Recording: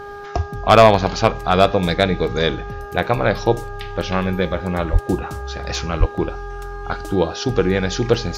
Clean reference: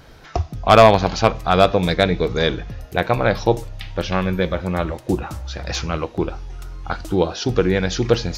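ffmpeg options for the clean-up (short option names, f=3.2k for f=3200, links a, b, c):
-filter_complex "[0:a]bandreject=f=406.9:t=h:w=4,bandreject=f=813.8:t=h:w=4,bandreject=f=1.2207k:t=h:w=4,bandreject=f=1.6276k:t=h:w=4,asplit=3[a][b][c];[a]afade=t=out:st=4.92:d=0.02[d];[b]highpass=f=140:w=0.5412,highpass=f=140:w=1.3066,afade=t=in:st=4.92:d=0.02,afade=t=out:st=5.04:d=0.02[e];[c]afade=t=in:st=5.04:d=0.02[f];[d][e][f]amix=inputs=3:normalize=0,asplit=3[g][h][i];[g]afade=t=out:st=5.99:d=0.02[j];[h]highpass=f=140:w=0.5412,highpass=f=140:w=1.3066,afade=t=in:st=5.99:d=0.02,afade=t=out:st=6.11:d=0.02[k];[i]afade=t=in:st=6.11:d=0.02[l];[j][k][l]amix=inputs=3:normalize=0"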